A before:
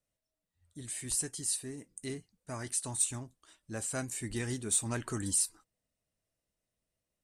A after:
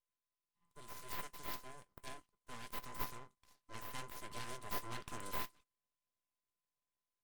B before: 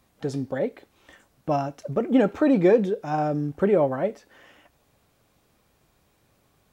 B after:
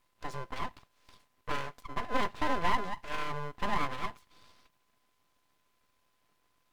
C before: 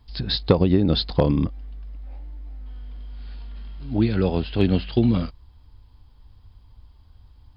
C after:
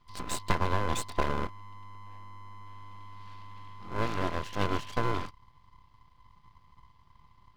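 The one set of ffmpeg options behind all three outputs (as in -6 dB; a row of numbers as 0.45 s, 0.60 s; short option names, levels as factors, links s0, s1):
-af "aeval=exprs='val(0)*sin(2*PI*510*n/s)':c=same,equalizer=f=2200:t=o:w=1.3:g=6.5,aeval=exprs='abs(val(0))':c=same,volume=0.473"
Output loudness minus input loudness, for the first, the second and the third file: -13.5 LU, -12.0 LU, -11.0 LU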